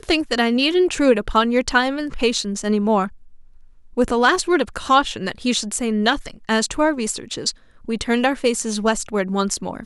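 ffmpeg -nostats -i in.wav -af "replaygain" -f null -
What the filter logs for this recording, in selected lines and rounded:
track_gain = -1.4 dB
track_peak = 0.537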